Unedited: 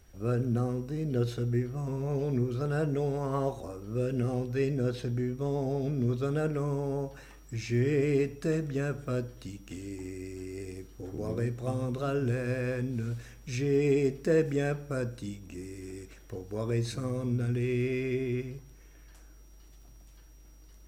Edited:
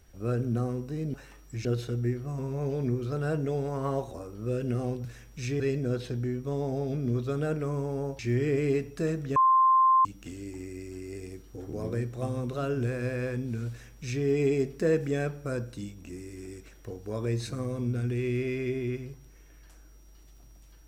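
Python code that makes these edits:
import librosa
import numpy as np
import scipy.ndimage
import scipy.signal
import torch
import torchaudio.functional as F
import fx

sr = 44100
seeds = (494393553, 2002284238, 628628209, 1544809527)

y = fx.edit(x, sr, fx.move(start_s=7.13, length_s=0.51, to_s=1.14),
    fx.bleep(start_s=8.81, length_s=0.69, hz=1050.0, db=-17.5),
    fx.duplicate(start_s=13.15, length_s=0.55, to_s=4.54), tone=tone)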